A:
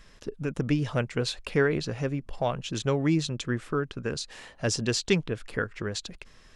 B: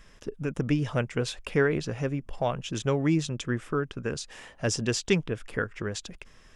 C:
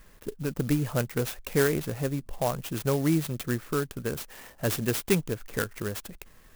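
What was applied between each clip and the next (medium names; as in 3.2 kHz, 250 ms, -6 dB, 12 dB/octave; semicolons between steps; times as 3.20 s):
peaking EQ 4.2 kHz -9 dB 0.23 oct
sampling jitter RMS 0.065 ms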